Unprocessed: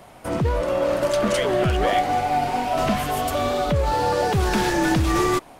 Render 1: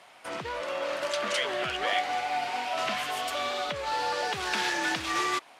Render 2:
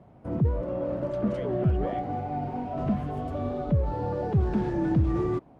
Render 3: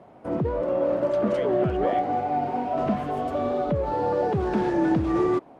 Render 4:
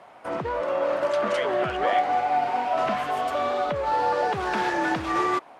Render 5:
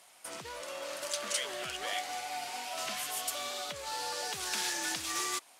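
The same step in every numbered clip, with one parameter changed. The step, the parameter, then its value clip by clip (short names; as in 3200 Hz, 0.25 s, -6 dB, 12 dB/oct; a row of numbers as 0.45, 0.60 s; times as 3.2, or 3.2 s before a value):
band-pass, frequency: 2900, 130, 330, 1100, 7900 Hz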